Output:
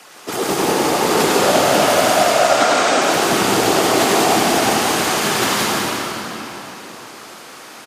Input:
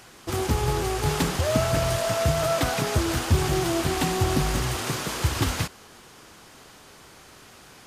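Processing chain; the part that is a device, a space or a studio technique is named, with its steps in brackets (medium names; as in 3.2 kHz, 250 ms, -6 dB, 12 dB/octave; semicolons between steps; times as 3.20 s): 2.21–3.02 s: elliptic band-pass 210–8000 Hz; feedback delay 100 ms, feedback 39%, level -6.5 dB; whispering ghost (whisper effect; high-pass 330 Hz 12 dB/octave; reverberation RT60 3.9 s, pre-delay 86 ms, DRR -3.5 dB); trim +6.5 dB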